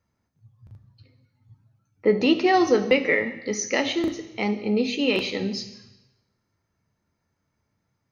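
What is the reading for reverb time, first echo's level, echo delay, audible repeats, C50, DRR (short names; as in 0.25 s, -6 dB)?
1.0 s, none, none, none, 11.5 dB, 7.0 dB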